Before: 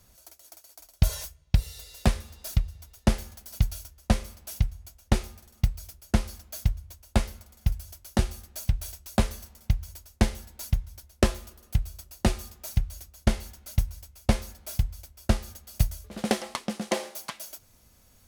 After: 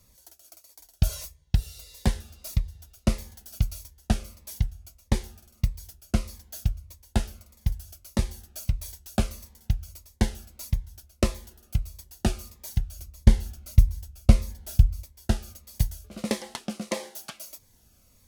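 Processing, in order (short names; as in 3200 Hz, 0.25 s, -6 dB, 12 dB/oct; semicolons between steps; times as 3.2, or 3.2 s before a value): 12.99–15.03 low shelf 190 Hz +10.5 dB; cascading phaser falling 1.6 Hz; gain -1 dB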